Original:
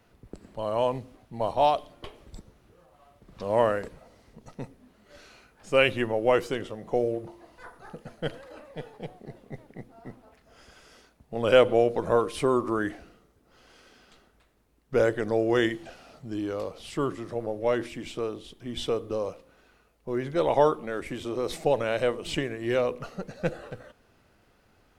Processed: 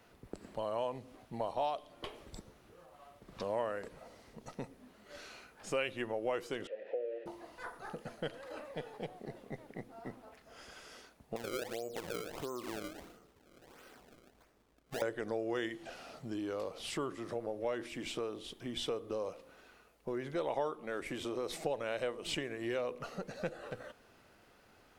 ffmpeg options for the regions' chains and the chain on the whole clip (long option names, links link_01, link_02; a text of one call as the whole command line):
ffmpeg -i in.wav -filter_complex "[0:a]asettb=1/sr,asplit=3[link_01][link_02][link_03];[link_01]atrim=end=6.674[link_04];[link_02]atrim=start=6.67:end=7.26,asetpts=PTS-STARTPTS,afade=type=in:duration=0.004:curve=qsin,afade=type=out:start_time=0.586:duration=0.004:curve=qsin,aeval=exprs='val(0)+0.5*0.0178*sgn(val(0))':channel_layout=same,asplit=3[link_05][link_06][link_07];[link_05]bandpass=frequency=530:width_type=q:width=8,volume=0dB[link_08];[link_06]bandpass=frequency=1840:width_type=q:width=8,volume=-6dB[link_09];[link_07]bandpass=frequency=2480:width_type=q:width=8,volume=-9dB[link_10];[link_08][link_09][link_10]amix=inputs=3:normalize=0,acrossover=split=260 4000:gain=0.178 1 0.0708[link_11][link_12][link_13];[link_11][link_12][link_13]amix=inputs=3:normalize=0[link_14];[link_03]atrim=start=7.256[link_15];[link_04][link_14]acrossfade=duration=0.004:curve1=hsin:curve2=qsin[link_16];[link_16][link_15]acrossfade=duration=0.004:curve1=qsin:curve2=hsin,asettb=1/sr,asplit=3[link_17][link_18][link_19];[link_17]atrim=end=11.364[link_20];[link_18]atrim=start=11.36:end=15.02,asetpts=PTS-STARTPTS,afade=type=in:duration=0.004:curve=qsin,afade=type=out:start_time=3.656:duration=0.004:curve=qsin,highshelf=frequency=4100:gain=-11,acompressor=threshold=-41dB:ratio=2.5:attack=3.2:release=140:knee=1:detection=peak,acrusher=samples=28:mix=1:aa=0.000001:lfo=1:lforange=44.8:lforate=1.5[link_21];[link_19]atrim=start=15.016[link_22];[link_20][link_21]acrossfade=duration=0.004:curve1=hsin:curve2=qsin[link_23];[link_23][link_22]acrossfade=duration=0.004:curve1=qsin:curve2=hsin,acompressor=threshold=-37dB:ratio=3,lowshelf=frequency=180:gain=-9,volume=1.5dB" out.wav